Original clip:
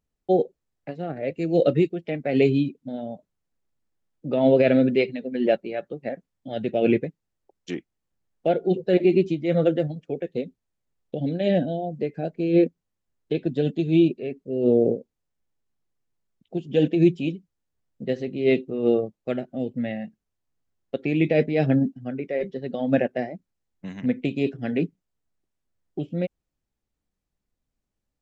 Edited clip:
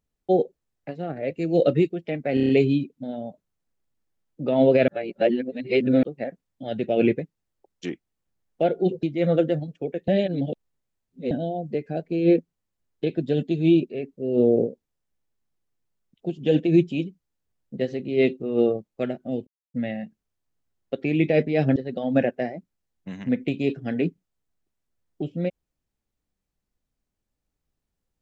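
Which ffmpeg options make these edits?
-filter_complex "[0:a]asplit=13[a][b][c][d][e][f][g][h][i][j][k][l][m];[a]atrim=end=2.372[n];[b]atrim=start=2.338:end=2.372[o];[c]atrim=start=2.338:end=2.372[p];[d]atrim=start=2.338:end=2.372[q];[e]atrim=start=2.338:end=2.372[r];[f]atrim=start=2.338:end=4.732[s];[g]atrim=start=4.728:end=5.882,asetpts=PTS-STARTPTS,areverse[t];[h]atrim=start=5.878:end=8.882[u];[i]atrim=start=9.308:end=10.362[v];[j]atrim=start=10.358:end=11.592,asetpts=PTS-STARTPTS,areverse[w];[k]atrim=start=11.588:end=19.75,asetpts=PTS-STARTPTS,afade=t=out:st=8.158:d=0.004:c=hsin,apad=pad_dur=0.27[x];[l]atrim=start=19.75:end=21.772,asetpts=PTS-STARTPTS,afade=t=in:d=0.004:c=hsin[y];[m]atrim=start=22.528[z];[n][o]acrossfade=d=0.004:c1=hsin:c2=hsin[aa];[aa][p]acrossfade=d=0.004:c1=hsin:c2=hsin[ab];[ab][q]acrossfade=d=0.004:c1=hsin:c2=hsin[ac];[ac][r]acrossfade=d=0.004:c1=hsin:c2=hsin[ad];[ad][s]acrossfade=d=0.004:c1=hsin:c2=hsin[ae];[ae][t]acrossfade=d=0.004:c1=hsin:c2=hsin[af];[af][u]acrossfade=d=0.004:c1=hsin:c2=hsin[ag];[ag][v]acrossfade=d=0.004:c1=hsin:c2=hsin[ah];[ah][w]acrossfade=d=0.004:c1=hsin:c2=hsin[ai];[x][y]concat=n=2:v=0:a=1[aj];[ai][aj]acrossfade=d=0.004:c1=hsin:c2=hsin[ak];[ak][z]acrossfade=d=0.004:c1=hsin:c2=hsin"

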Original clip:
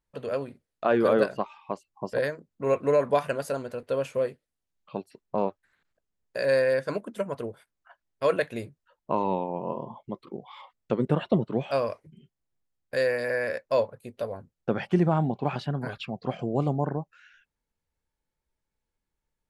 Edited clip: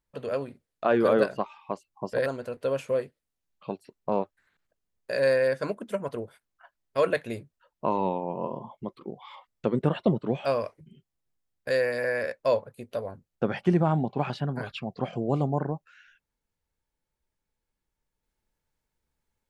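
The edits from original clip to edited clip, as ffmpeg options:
-filter_complex "[0:a]asplit=2[a][b];[a]atrim=end=2.262[c];[b]atrim=start=3.518[d];[c][d]acrossfade=d=0.004:c1=hsin:c2=hsin"

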